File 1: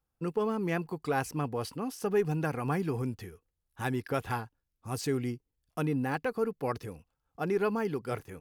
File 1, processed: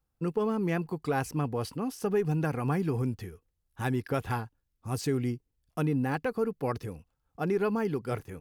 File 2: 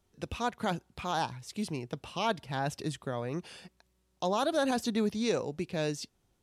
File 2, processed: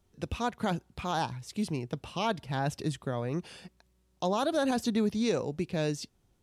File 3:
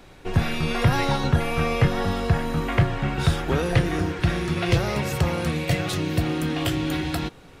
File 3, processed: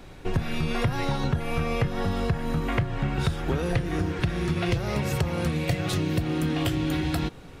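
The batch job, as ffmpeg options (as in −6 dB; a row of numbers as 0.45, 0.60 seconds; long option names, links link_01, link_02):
-af "lowshelf=frequency=300:gain=5,acompressor=threshold=-22dB:ratio=6"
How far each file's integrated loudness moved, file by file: +1.5, +1.5, −3.5 LU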